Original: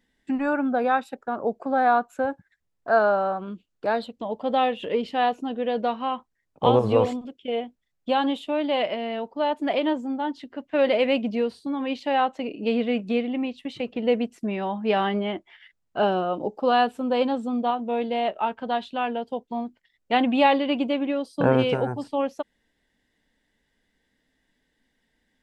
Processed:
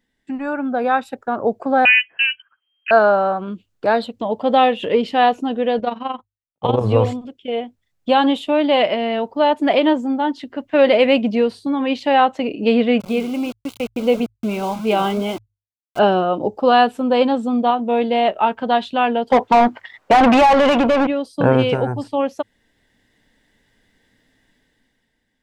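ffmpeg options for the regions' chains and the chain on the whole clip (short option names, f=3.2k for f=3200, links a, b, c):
-filter_complex "[0:a]asettb=1/sr,asplit=3[a][b][c];[a]atrim=end=1.854[d];[b]atrim=start=1.85:end=2.91,asetpts=PTS-STARTPTS,afade=t=in:d=0.004:c=qsin,afade=t=out:st=1.056:d=0.004:c=qsin,bandreject=f=910:w=8.8,lowpass=f=2.7k:t=q:w=0.5098,lowpass=f=2.7k:t=q:w=0.6013,lowpass=f=2.7k:t=q:w=0.9,lowpass=f=2.7k:t=q:w=2.563,afreqshift=-3200[e];[c]atrim=start=2.906[f];[d][e]acrossfade=d=0.004:c1=hsin:c2=qsin[g];[g][f]acrossfade=d=0.004:c1=qsin:c2=hsin,asettb=1/sr,asplit=3[h][i][j];[h]atrim=end=5.794[k];[i]atrim=start=5.79:end=6.81,asetpts=PTS-STARTPTS,afade=t=in:d=0.004:c=qsin,afade=t=out:st=1.016:d=0.004:c=qsin,agate=range=-33dB:threshold=-40dB:ratio=3:release=100:detection=peak,tremolo=f=22:d=0.75[l];[j]atrim=start=6.806[m];[k][l]acrossfade=d=0.004:c1=hsin:c2=qsin[n];[n][m]acrossfade=d=0.004:c1=qsin:c2=hsin,asettb=1/sr,asplit=3[o][p][q];[o]atrim=end=13.004[r];[p]atrim=start=13:end=15.99,asetpts=PTS-STARTPTS,afade=t=in:d=0.004:c=qsin,afade=t=out:st=2.986:d=0.004:c=qsin,flanger=delay=2:depth=8:regen=-80:speed=1.7:shape=triangular,aeval=exprs='val(0)*gte(abs(val(0)),0.01)':c=same,asuperstop=centerf=1800:order=4:qfactor=3.8[s];[q]atrim=start=15.986[t];[r][s]acrossfade=d=0.004:c1=hsin:c2=qsin[u];[u][t]acrossfade=d=0.004:c1=qsin:c2=hsin,asettb=1/sr,asplit=3[v][w][x];[v]atrim=end=19.304[y];[w]atrim=start=19.3:end=21.07,asetpts=PTS-STARTPTS,afade=t=in:d=0.004:c=qsin,afade=t=out:st=1.766:d=0.004:c=qsin,equalizer=f=1k:w=0.87:g=10.5,acompressor=threshold=-20dB:ratio=6:attack=3.2:release=140:knee=1:detection=peak,asplit=2[z][aa];[aa]highpass=f=720:p=1,volume=25dB,asoftclip=type=tanh:threshold=-13dB[ab];[z][ab]amix=inputs=2:normalize=0,lowpass=f=1.6k:p=1,volume=-6dB[ac];[x]atrim=start=21.066[ad];[y][ac]acrossfade=d=0.004:c1=hsin:c2=qsin[ae];[ae][ad]acrossfade=d=0.004:c1=qsin:c2=hsin,equalizer=f=110:t=o:w=0.22:g=10,bandreject=f=50:t=h:w=6,bandreject=f=100:t=h:w=6,dynaudnorm=f=190:g=9:m=11.5dB,volume=-1dB"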